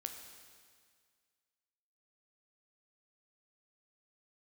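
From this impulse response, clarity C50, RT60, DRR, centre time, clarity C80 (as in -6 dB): 6.5 dB, 1.9 s, 4.5 dB, 39 ms, 7.5 dB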